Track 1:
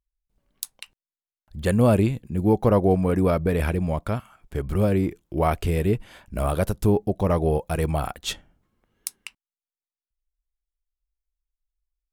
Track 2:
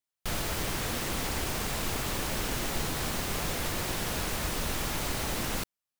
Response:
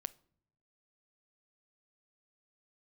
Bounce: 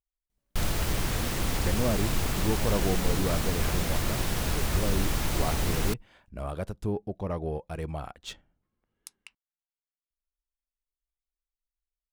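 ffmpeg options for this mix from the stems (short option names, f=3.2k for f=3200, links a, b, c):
-filter_complex "[0:a]adynamicsmooth=sensitivity=7:basefreq=5.7k,volume=-10.5dB[a];[1:a]lowshelf=f=160:g=9,adelay=300,volume=0dB[b];[a][b]amix=inputs=2:normalize=0"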